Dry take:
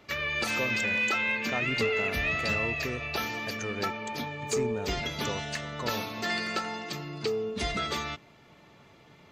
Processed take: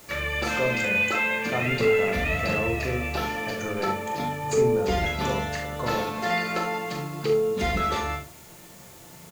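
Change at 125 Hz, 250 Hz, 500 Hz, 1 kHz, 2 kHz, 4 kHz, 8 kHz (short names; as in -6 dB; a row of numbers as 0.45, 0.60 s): +7.0, +5.0, +8.0, +6.5, +2.5, -0.5, +1.5 dB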